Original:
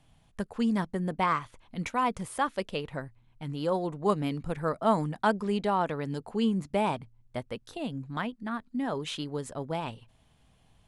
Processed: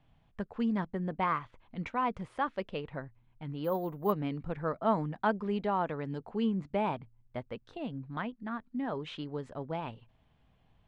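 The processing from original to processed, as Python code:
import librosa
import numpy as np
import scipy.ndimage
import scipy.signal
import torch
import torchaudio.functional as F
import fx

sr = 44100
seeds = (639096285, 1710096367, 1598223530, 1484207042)

y = scipy.signal.sosfilt(scipy.signal.butter(2, 2800.0, 'lowpass', fs=sr, output='sos'), x)
y = fx.resample_bad(y, sr, factor=3, down='none', up='hold', at=(3.64, 4.12))
y = y * librosa.db_to_amplitude(-3.5)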